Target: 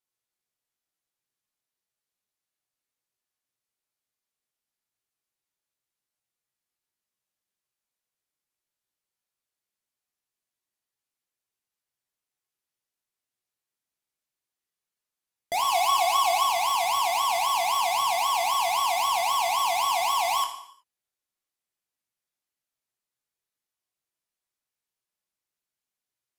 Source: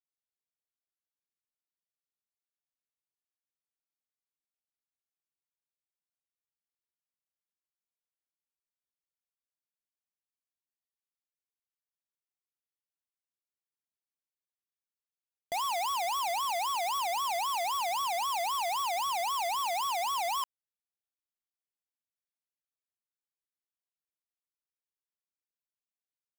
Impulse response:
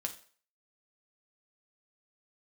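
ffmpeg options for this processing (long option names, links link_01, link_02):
-filter_complex "[0:a]asettb=1/sr,asplit=3[link_01][link_02][link_03];[link_01]atrim=end=15.684[link_04];[link_02]atrim=start=15.68:end=16.44,asetpts=PTS-STARTPTS,afade=type=in:duration=0.004:curve=qsin,afade=type=out:start_time=0.756:duration=0.004:curve=qsin,aecho=1:1:2.7:0.59,atrim=end_sample=33516[link_05];[link_03]atrim=start=16.436[link_06];[link_04][link_05]acrossfade=duration=0.004:curve1=hsin:curve2=qsin[link_07];[link_07][link_06]acrossfade=duration=0.004:curve1=qsin:curve2=hsin[link_08];[1:a]atrim=start_sample=2205,afade=type=out:start_time=0.29:duration=0.01,atrim=end_sample=13230,asetrate=27342,aresample=44100[link_09];[link_08][link_09]afir=irnorm=-1:irlink=0,volume=4dB"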